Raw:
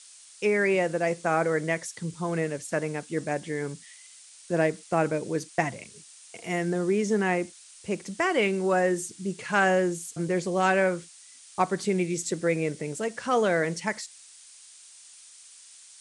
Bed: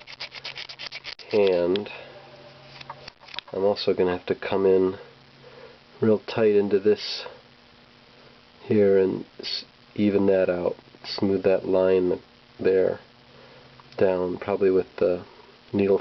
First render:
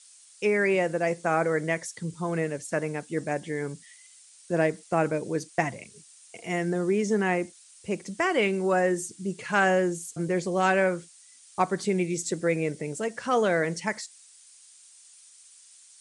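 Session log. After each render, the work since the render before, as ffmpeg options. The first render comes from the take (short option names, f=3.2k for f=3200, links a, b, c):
-af "afftdn=nr=6:nf=-51"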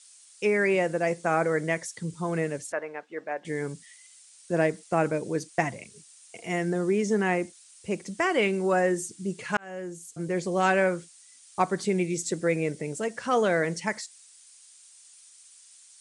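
-filter_complex "[0:a]asettb=1/sr,asplit=3[a][b][c];[a]atrim=end=2.724[d];[b]atrim=start=2.72:end=3.45,asetpts=PTS-STARTPTS,afade=t=in:d=0.004:c=qsin,afade=t=out:st=0.726:d=0.004:c=qsin,highpass=570,lowpass=2.1k[e];[c]atrim=start=3.446[f];[d][e]acrossfade=d=0.004:c1=hsin:c2=qsin[g];[g][f]acrossfade=d=0.004:c1=qsin:c2=hsin,asplit=2[h][i];[h]atrim=end=9.57,asetpts=PTS-STARTPTS,afade=t=out:st=9.566:d=0.004:c=hsin[j];[i]atrim=start=9.57,asetpts=PTS-STARTPTS,afade=t=in:d=0.95[k];[j][k]concat=n=2:v=0:a=1"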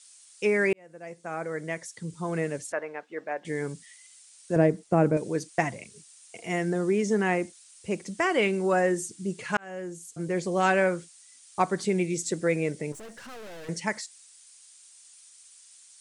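-filter_complex "[0:a]asettb=1/sr,asplit=3[a][b][c];[a]atrim=end=4.564[d];[b]atrim=start=4.56:end=5.17,asetpts=PTS-STARTPTS,afade=t=in:d=0.004:c=qsin,afade=t=out:st=0.606:d=0.004:c=qsin,tiltshelf=f=780:g=7.5[e];[c]atrim=start=5.166[f];[d][e]acrossfade=d=0.004:c1=hsin:c2=qsin[g];[g][f]acrossfade=d=0.004:c1=qsin:c2=hsin,asettb=1/sr,asplit=3[h][i][j];[h]atrim=end=12.924[k];[i]atrim=start=12.92:end=13.69,asetpts=PTS-STARTPTS,afade=t=in:d=0.004:c=qsin,afade=t=out:st=0.766:d=0.004:c=qsin,aeval=exprs='(tanh(126*val(0)+0.4)-tanh(0.4))/126':c=same[l];[j]atrim=start=13.686[m];[k][l]acrossfade=d=0.004:c1=hsin:c2=qsin[n];[n][m]acrossfade=d=0.004:c1=qsin:c2=hsin,asplit=2[o][p];[o]atrim=end=0.73,asetpts=PTS-STARTPTS,afade=t=out:st=0.726:d=0.004:c=hsin[q];[p]atrim=start=0.73,asetpts=PTS-STARTPTS,afade=t=in:d=1.86[r];[q][r]concat=n=2:v=0:a=1"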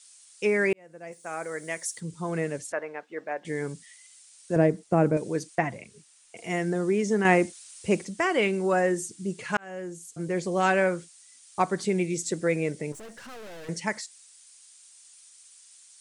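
-filter_complex "[0:a]asplit=3[a][b][c];[a]afade=t=out:st=1.11:d=0.02[d];[b]aemphasis=mode=production:type=bsi,afade=t=in:st=1.11:d=0.02,afade=t=out:st=1.99:d=0.02[e];[c]afade=t=in:st=1.99:d=0.02[f];[d][e][f]amix=inputs=3:normalize=0,asettb=1/sr,asplit=3[g][h][i];[g]atrim=end=5.554[j];[h]atrim=start=5.55:end=6.37,asetpts=PTS-STARTPTS,afade=t=in:d=0.004:c=qsin,afade=t=out:st=0.816:d=0.004:c=qsin,acrossover=split=3100[k][l];[l]acompressor=threshold=-55dB:ratio=4:attack=1:release=60[m];[k][m]amix=inputs=2:normalize=0[n];[i]atrim=start=6.366[o];[j][n]acrossfade=d=0.004:c1=hsin:c2=qsin[p];[p][o]acrossfade=d=0.004:c1=qsin:c2=hsin,asplit=3[q][r][s];[q]atrim=end=7.252[t];[r]atrim=start=7.248:end=8.052,asetpts=PTS-STARTPTS,volume=6dB[u];[s]atrim=start=8.048[v];[t][u]acrossfade=d=0.004:c1=hsin:c2=hsin[w];[w][v]acrossfade=d=0.004:c1=hsin:c2=hsin"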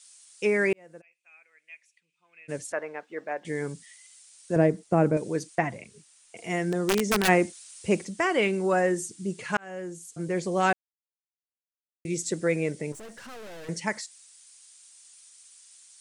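-filter_complex "[0:a]asplit=3[a][b][c];[a]afade=t=out:st=1:d=0.02[d];[b]bandpass=f=2.5k:t=q:w=16,afade=t=in:st=1:d=0.02,afade=t=out:st=2.48:d=0.02[e];[c]afade=t=in:st=2.48:d=0.02[f];[d][e][f]amix=inputs=3:normalize=0,asplit=3[g][h][i];[g]afade=t=out:st=6.72:d=0.02[j];[h]aeval=exprs='(mod(7.08*val(0)+1,2)-1)/7.08':c=same,afade=t=in:st=6.72:d=0.02,afade=t=out:st=7.27:d=0.02[k];[i]afade=t=in:st=7.27:d=0.02[l];[j][k][l]amix=inputs=3:normalize=0,asplit=3[m][n][o];[m]atrim=end=10.73,asetpts=PTS-STARTPTS,afade=t=out:st=10.726:d=0.004:c=hsin[p];[n]atrim=start=10.73:end=12.05,asetpts=PTS-STARTPTS,volume=0[q];[o]atrim=start=12.05,asetpts=PTS-STARTPTS,afade=t=in:d=0.004:c=hsin[r];[p][q][r]concat=n=3:v=0:a=1"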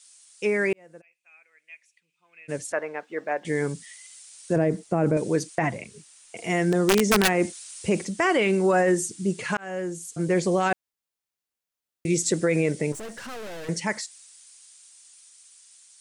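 -af "dynaudnorm=f=560:g=11:m=11.5dB,alimiter=limit=-12.5dB:level=0:latency=1:release=31"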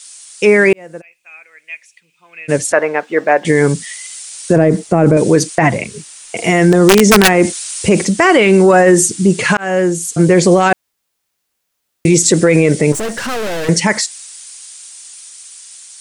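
-af "acontrast=36,alimiter=level_in=11.5dB:limit=-1dB:release=50:level=0:latency=1"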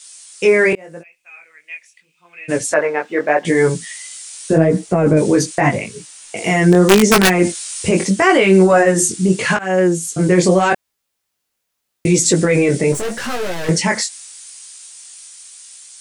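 -af "flanger=delay=16:depth=6.6:speed=0.82"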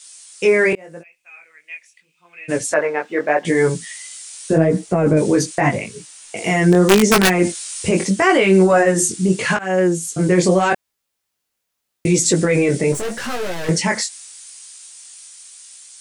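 -af "volume=-2dB"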